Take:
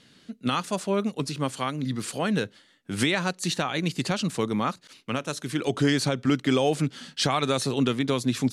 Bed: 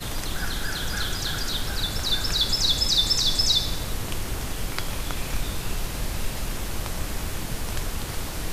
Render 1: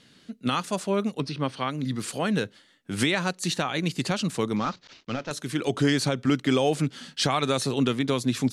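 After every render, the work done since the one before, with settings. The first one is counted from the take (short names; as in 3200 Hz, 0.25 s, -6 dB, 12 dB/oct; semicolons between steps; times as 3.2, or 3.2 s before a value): 1.2–1.71 polynomial smoothing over 15 samples; 4.56–5.31 CVSD 32 kbps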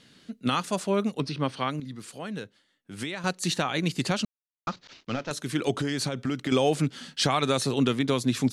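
1.8–3.24 gain -10 dB; 4.25–4.67 mute; 5.8–6.52 compressor, threshold -24 dBFS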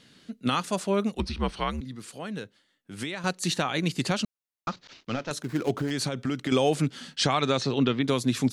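1.15–1.81 frequency shift -77 Hz; 5.42–5.91 median filter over 15 samples; 7.15–8.02 LPF 9300 Hz -> 4200 Hz 24 dB/oct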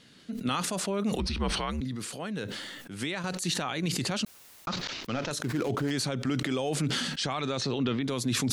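limiter -21 dBFS, peak gain reduction 9.5 dB; sustainer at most 27 dB/s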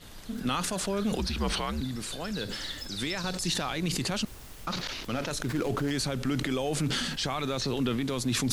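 add bed -17.5 dB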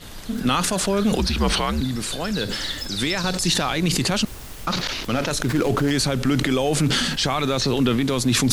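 gain +9 dB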